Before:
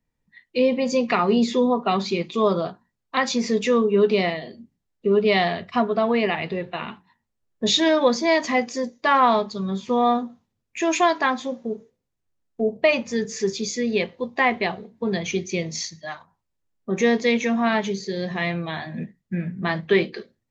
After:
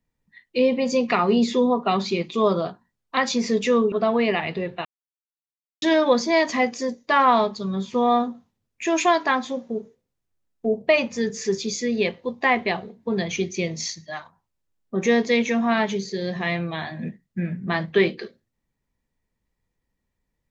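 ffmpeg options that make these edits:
-filter_complex "[0:a]asplit=4[a][b][c][d];[a]atrim=end=3.922[e];[b]atrim=start=5.868:end=6.8,asetpts=PTS-STARTPTS,afade=t=out:st=0.928:d=0.004:c=hsin[f];[c]atrim=start=6.8:end=7.77,asetpts=PTS-STARTPTS,volume=0[g];[d]atrim=start=7.77,asetpts=PTS-STARTPTS,afade=t=in:d=0.004:c=hsin[h];[f][g][h]concat=n=3:v=0:a=1[i];[e][i]acrossfade=d=0.004:c1=hsin:c2=hsin"

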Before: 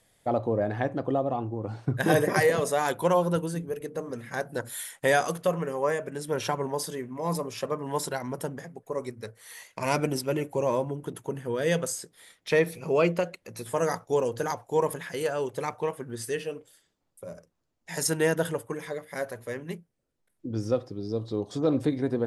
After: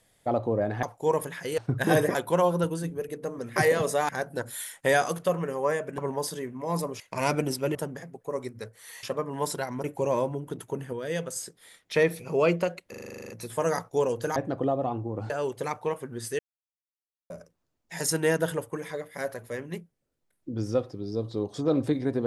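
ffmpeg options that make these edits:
-filter_complex "[0:a]asplit=27[a][b][c][d][e][f][g][h][i][j][k][l][m][n][o][p][q][r][s][t][u][v][w][x][y][z][aa];[a]atrim=end=0.832[ab];[b]atrim=start=14.518:end=15.272[ac];[c]atrim=start=1.768:end=2.342[ad];[d]atrim=start=2.868:end=4.282[ae];[e]atrim=start=2.338:end=2.872[af];[f]atrim=start=4.278:end=6.172[ag];[g]atrim=start=6.538:end=7.562[ah];[h]atrim=start=9.648:end=10.402[ai];[i]atrim=start=8.368:end=9.652[aj];[j]atrim=start=7.558:end=8.372[ak];[k]atrim=start=10.398:end=11.492[al];[l]atrim=start=11.488:end=11.922,asetpts=PTS-STARTPTS,volume=-5.5dB[am];[m]atrim=start=11.918:end=13.502[an];[n]atrim=start=13.458:end=13.502[ao];[o]atrim=start=13.458:end=13.502[ap];[p]atrim=start=13.458:end=13.502[aq];[q]atrim=start=13.458:end=13.502[ar];[r]atrim=start=13.458:end=13.502[as];[s]atrim=start=13.458:end=13.502[at];[t]atrim=start=13.458:end=13.502[au];[u]atrim=start=13.458:end=13.502[av];[v]atrim=start=13.458:end=13.502[aw];[w]atrim=start=13.458:end=14.522[ax];[x]atrim=start=0.828:end=1.772[ay];[y]atrim=start=15.268:end=16.36,asetpts=PTS-STARTPTS,afade=t=out:st=1.088:d=0.004:c=hsin[az];[z]atrim=start=16.36:end=17.27,asetpts=PTS-STARTPTS,volume=0[ba];[aa]atrim=start=17.27,asetpts=PTS-STARTPTS,afade=t=in:d=0.004:c=hsin[bb];[ab][ac]acrossfade=d=0.004:c1=hsin:c2=hsin[bc];[bc][ad]acrossfade=d=0.004:c1=hsin:c2=hsin[bd];[bd][ae]acrossfade=d=0.004:c1=hsin:c2=hsin[be];[be][af]acrossfade=d=0.004:c1=hsin:c2=hsin[bf];[bf][ag]acrossfade=d=0.004:c1=hsin:c2=hsin[bg];[bg][ah]acrossfade=d=0.004:c1=hsin:c2=hsin[bh];[bh][ai]acrossfade=d=0.004:c1=hsin:c2=hsin[bi];[bi][aj]acrossfade=d=0.004:c1=hsin:c2=hsin[bj];[bj][ak]acrossfade=d=0.004:c1=hsin:c2=hsin[bk];[bk][al]acrossfade=d=0.004:c1=hsin:c2=hsin[bl];[bl][am]acrossfade=d=0.004:c1=hsin:c2=hsin[bm];[bm][an]acrossfade=d=0.004:c1=hsin:c2=hsin[bn];[bn][ao]acrossfade=d=0.004:c1=hsin:c2=hsin[bo];[bo][ap]acrossfade=d=0.004:c1=hsin:c2=hsin[bp];[bp][aq]acrossfade=d=0.004:c1=hsin:c2=hsin[bq];[bq][ar]acrossfade=d=0.004:c1=hsin:c2=hsin[br];[br][as]acrossfade=d=0.004:c1=hsin:c2=hsin[bs];[bs][at]acrossfade=d=0.004:c1=hsin:c2=hsin[bt];[bt][au]acrossfade=d=0.004:c1=hsin:c2=hsin[bu];[bu][av]acrossfade=d=0.004:c1=hsin:c2=hsin[bv];[bv][aw]acrossfade=d=0.004:c1=hsin:c2=hsin[bw];[bw][ax]acrossfade=d=0.004:c1=hsin:c2=hsin[bx];[bx][ay]acrossfade=d=0.004:c1=hsin:c2=hsin[by];[az][ba][bb]concat=n=3:v=0:a=1[bz];[by][bz]acrossfade=d=0.004:c1=hsin:c2=hsin"

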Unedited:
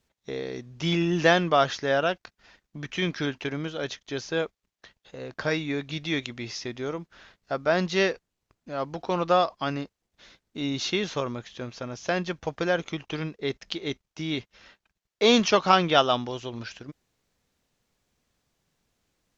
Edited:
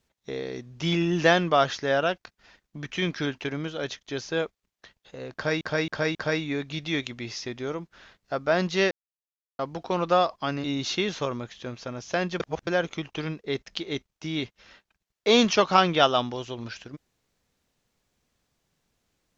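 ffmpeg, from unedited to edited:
-filter_complex "[0:a]asplit=9[a][b][c][d][e][f][g][h][i];[a]atrim=end=5.612[j];[b]atrim=start=5.338:end=5.612[k];[c]atrim=start=5.338:end=5.612[l];[d]atrim=start=5.338:end=8.1,asetpts=PTS-STARTPTS,afade=t=out:st=2.758:d=0.004:c=hsin[m];[e]atrim=start=8.1:end=8.78,asetpts=PTS-STARTPTS,volume=0[n];[f]atrim=start=8.78:end=9.832,asetpts=PTS-STARTPTS,afade=t=in:d=0.004:c=hsin[o];[g]atrim=start=10.588:end=12.352[p];[h]atrim=start=12.348:end=12.622,asetpts=PTS-STARTPTS,areverse[q];[i]atrim=start=12.618[r];[j][k]acrossfade=d=0.004:c1=hsin:c2=hsin[s];[s][l]acrossfade=d=0.004:c1=hsin:c2=hsin[t];[m][n][o]concat=n=3:v=0:a=1[u];[t][u]acrossfade=d=0.004:c1=hsin:c2=hsin[v];[v][p]acrossfade=d=0.004:c1=hsin:c2=hsin[w];[w][q]acrossfade=d=0.004:c1=hsin:c2=hsin[x];[x][r]acrossfade=d=0.004:c1=hsin:c2=hsin"

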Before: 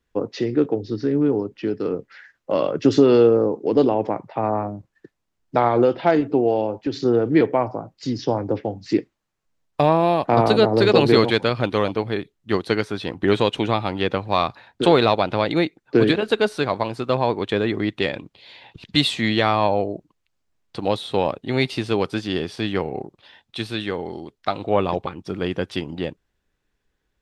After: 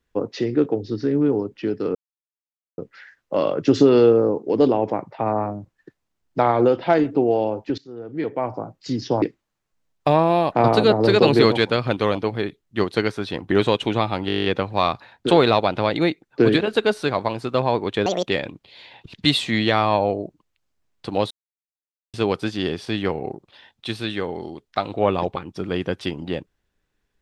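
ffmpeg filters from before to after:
-filter_complex "[0:a]asplit=17[a][b][c][d][e][f][g][h][i][j][k][l][m][n][o][p][q];[a]atrim=end=1.95,asetpts=PTS-STARTPTS,afade=t=out:st=1.946:d=0.004:c=hsin,apad=pad_dur=0.83[r];[b]atrim=start=1.95:end=6.95,asetpts=PTS-STARTPTS,afade=t=in:d=0.004:c=hsin,afade=t=out:st=4.996:d=0.004:c=hsin:silence=0.0841395[s];[c]atrim=start=6.95:end=8.392,asetpts=PTS-STARTPTS,afade=t=in:d=0.85:c=qua:silence=0.0841395[t];[d]atrim=start=8.948:end=14.022[u];[e]atrim=start=13.998:end=14.022[v];[f]atrim=start=13.998:end=14.022[w];[g]atrim=start=13.998:end=14.022[x];[h]atrim=start=13.998:end=14.022[y];[i]atrim=start=13.998:end=14.022[z];[j]atrim=start=13.998:end=14.022[aa];[k]atrim=start=13.998:end=14.022[ab];[l]atrim=start=13.998:end=14.022[ac];[m]atrim=start=13.998:end=17.614[ad];[n]atrim=start=17.61:end=17.98,asetpts=PTS-STARTPTS,asetrate=75411,aresample=44100,atrim=end_sample=9542,asetpts=PTS-STARTPTS[ae];[o]atrim=start=17.976:end=21.01,asetpts=PTS-STARTPTS,afade=t=out:st=3.03:d=0.004:c=hsin[af];[p]atrim=start=21.01:end=21.84,asetpts=PTS-STARTPTS,volume=0[ag];[q]atrim=start=21.84,asetpts=PTS-STARTPTS,afade=t=in:d=0.004:c=hsin[ah];[r][s][t]concat=n=3:v=0:a=1[ai];[ai][u]acrossfade=d=0.004:c1=hsin:c2=hsin[aj];[aj][v]acrossfade=d=0.004:c1=hsin:c2=hsin[ak];[ak][w]acrossfade=d=0.004:c1=hsin:c2=hsin[al];[al][x]acrossfade=d=0.004:c1=hsin:c2=hsin[am];[am][y]acrossfade=d=0.004:c1=hsin:c2=hsin[an];[an][z]acrossfade=d=0.004:c1=hsin:c2=hsin[ao];[ao][aa]acrossfade=d=0.004:c1=hsin:c2=hsin[ap];[ap][ab]acrossfade=d=0.004:c1=hsin:c2=hsin[aq];[aq][ac]acrossfade=d=0.004:c1=hsin:c2=hsin[ar];[ar][ad]acrossfade=d=0.004:c1=hsin:c2=hsin[as];[as][ae]acrossfade=d=0.004:c1=hsin:c2=hsin[at];[af][ag][ah]concat=n=3:v=0:a=1[au];[at][au]acrossfade=d=0.004:c1=hsin:c2=hsin"

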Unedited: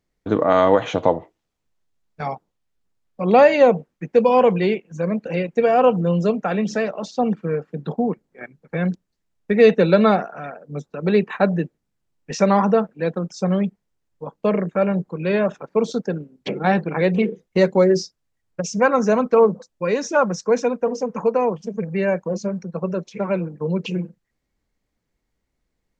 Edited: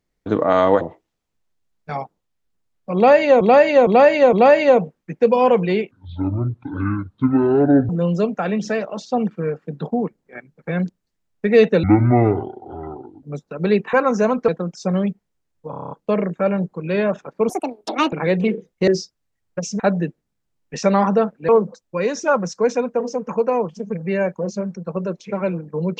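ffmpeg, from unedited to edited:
-filter_complex "[0:a]asplit=23[a][b][c][d][e][f][g][h][i][j][k][l][m][n][o][p][q][r][s][t][u][v][w];[a]atrim=end=0.812[x];[b]atrim=start=1.118:end=3.722[y];[c]atrim=start=3.258:end=3.722[z];[d]atrim=start=3.258:end=3.722[aa];[e]atrim=start=3.258:end=4.844[ab];[f]atrim=start=4.84:end=5.95,asetpts=PTS-STARTPTS,asetrate=24696,aresample=44100,atrim=end_sample=87412,asetpts=PTS-STARTPTS[ac];[g]atrim=start=5.946:end=9.894[ad];[h]atrim=start=9.89:end=10.66,asetpts=PTS-STARTPTS,asetrate=24255,aresample=44100[ae];[i]atrim=start=10.656:end=11.362[af];[j]atrim=start=18.808:end=19.362[ag];[k]atrim=start=13.048:end=14.302[ah];[l]atrim=start=14.268:end=14.302[ai];[m]atrim=start=14.268:end=14.302[aj];[n]atrim=start=14.268:end=14.302[ak];[o]atrim=start=14.268:end=14.302[al];[p]atrim=start=14.268:end=14.302[am];[q]atrim=start=14.268:end=14.302[an];[r]atrim=start=14.268:end=15.854[ao];[s]atrim=start=15.85:end=16.87,asetpts=PTS-STARTPTS,asetrate=71001,aresample=44100,atrim=end_sample=27939,asetpts=PTS-STARTPTS[ap];[t]atrim=start=16.866:end=17.622[aq];[u]atrim=start=17.888:end=18.812[ar];[v]atrim=start=11.358:end=13.052[as];[w]atrim=start=19.358[at];[x][y]acrossfade=d=0.004:c1=hsin:c2=hsin[au];[au][z]acrossfade=d=0.004:c1=hsin:c2=hsin[av];[av][aa]acrossfade=d=0.004:c1=hsin:c2=hsin[aw];[aw][ab]acrossfade=d=0.004:c1=hsin:c2=hsin[ax];[ax][ac]acrossfade=d=0.004:c1=hsin:c2=hsin[ay];[ay][ad]acrossfade=d=0.004:c1=hsin:c2=hsin[az];[az][ae]acrossfade=d=0.004:c1=hsin:c2=hsin[ba];[ba][af]acrossfade=d=0.004:c1=hsin:c2=hsin[bb];[bb][ag]acrossfade=d=0.004:c1=hsin:c2=hsin[bc];[bc][ah]acrossfade=d=0.004:c1=hsin:c2=hsin[bd];[bd][ai]acrossfade=d=0.004:c1=hsin:c2=hsin[be];[be][aj]acrossfade=d=0.004:c1=hsin:c2=hsin[bf];[bf][ak]acrossfade=d=0.004:c1=hsin:c2=hsin[bg];[bg][al]acrossfade=d=0.004:c1=hsin:c2=hsin[bh];[bh][am]acrossfade=d=0.004:c1=hsin:c2=hsin[bi];[bi][an]acrossfade=d=0.004:c1=hsin:c2=hsin[bj];[bj][ao]acrossfade=d=0.004:c1=hsin:c2=hsin[bk];[bk][ap]acrossfade=d=0.004:c1=hsin:c2=hsin[bl];[bl][aq]acrossfade=d=0.004:c1=hsin:c2=hsin[bm];[bm][ar]acrossfade=d=0.004:c1=hsin:c2=hsin[bn];[bn][as]acrossfade=d=0.004:c1=hsin:c2=hsin[bo];[bo][at]acrossfade=d=0.004:c1=hsin:c2=hsin"

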